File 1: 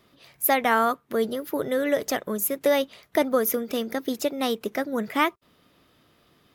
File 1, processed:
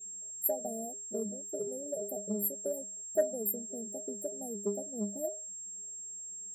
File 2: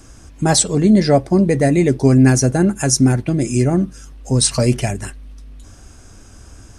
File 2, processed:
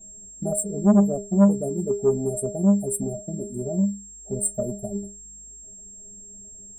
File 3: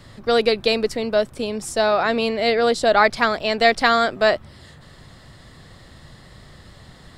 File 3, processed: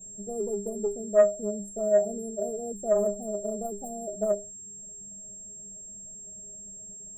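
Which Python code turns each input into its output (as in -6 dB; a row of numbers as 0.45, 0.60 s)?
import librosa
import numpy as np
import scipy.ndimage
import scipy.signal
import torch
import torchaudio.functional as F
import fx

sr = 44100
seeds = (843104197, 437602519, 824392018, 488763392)

y = fx.wiener(x, sr, points=15)
y = fx.dereverb_blind(y, sr, rt60_s=0.51)
y = fx.clip_asym(y, sr, top_db=-7.5, bottom_db=-6.5)
y = y + 10.0 ** (-47.0 / 20.0) * np.sin(2.0 * np.pi * 7500.0 * np.arange(len(y)) / sr)
y = fx.brickwall_bandstop(y, sr, low_hz=800.0, high_hz=7200.0)
y = fx.stiff_resonator(y, sr, f0_hz=200.0, decay_s=0.35, stiffness=0.008)
y = fx.transformer_sat(y, sr, knee_hz=380.0)
y = y * 10.0 ** (7.5 / 20.0)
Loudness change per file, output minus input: -10.5, -8.5, -9.0 LU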